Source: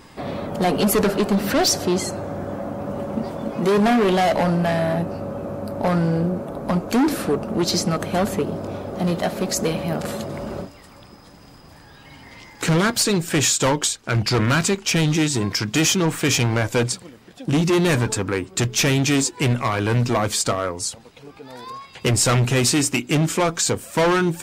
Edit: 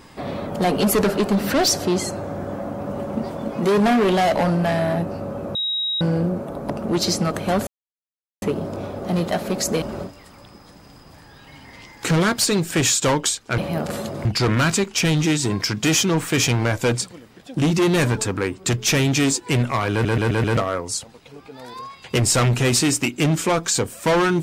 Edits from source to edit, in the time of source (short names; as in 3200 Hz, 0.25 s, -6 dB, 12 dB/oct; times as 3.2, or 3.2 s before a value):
5.55–6.01 bleep 3810 Hz -20.5 dBFS
6.7–7.36 cut
8.33 insert silence 0.75 s
9.73–10.4 move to 14.16
19.83 stutter in place 0.13 s, 5 plays